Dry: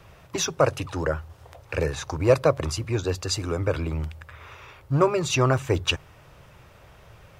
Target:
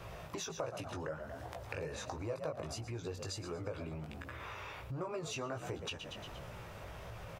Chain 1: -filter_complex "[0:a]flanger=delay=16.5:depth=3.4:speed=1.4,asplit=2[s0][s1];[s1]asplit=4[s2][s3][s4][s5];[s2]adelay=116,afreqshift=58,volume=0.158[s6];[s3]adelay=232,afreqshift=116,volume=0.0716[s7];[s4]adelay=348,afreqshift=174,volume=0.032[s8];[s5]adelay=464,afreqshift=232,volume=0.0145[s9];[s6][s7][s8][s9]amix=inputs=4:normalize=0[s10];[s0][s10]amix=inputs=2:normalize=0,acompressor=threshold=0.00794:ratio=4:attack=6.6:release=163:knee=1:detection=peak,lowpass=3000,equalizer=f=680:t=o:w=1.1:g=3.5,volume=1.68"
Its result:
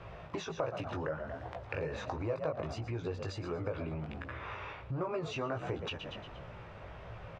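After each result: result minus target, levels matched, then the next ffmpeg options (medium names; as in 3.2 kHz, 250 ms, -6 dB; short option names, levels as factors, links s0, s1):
compression: peak gain reduction -4.5 dB; 4 kHz band -4.0 dB
-filter_complex "[0:a]flanger=delay=16.5:depth=3.4:speed=1.4,asplit=2[s0][s1];[s1]asplit=4[s2][s3][s4][s5];[s2]adelay=116,afreqshift=58,volume=0.158[s6];[s3]adelay=232,afreqshift=116,volume=0.0716[s7];[s4]adelay=348,afreqshift=174,volume=0.032[s8];[s5]adelay=464,afreqshift=232,volume=0.0145[s9];[s6][s7][s8][s9]amix=inputs=4:normalize=0[s10];[s0][s10]amix=inputs=2:normalize=0,acompressor=threshold=0.00398:ratio=4:attack=6.6:release=163:knee=1:detection=peak,lowpass=3000,equalizer=f=680:t=o:w=1.1:g=3.5,volume=1.68"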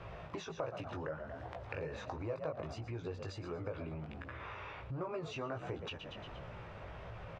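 4 kHz band -4.0 dB
-filter_complex "[0:a]flanger=delay=16.5:depth=3.4:speed=1.4,asplit=2[s0][s1];[s1]asplit=4[s2][s3][s4][s5];[s2]adelay=116,afreqshift=58,volume=0.158[s6];[s3]adelay=232,afreqshift=116,volume=0.0716[s7];[s4]adelay=348,afreqshift=174,volume=0.032[s8];[s5]adelay=464,afreqshift=232,volume=0.0145[s9];[s6][s7][s8][s9]amix=inputs=4:normalize=0[s10];[s0][s10]amix=inputs=2:normalize=0,acompressor=threshold=0.00398:ratio=4:attack=6.6:release=163:knee=1:detection=peak,equalizer=f=680:t=o:w=1.1:g=3.5,volume=1.68"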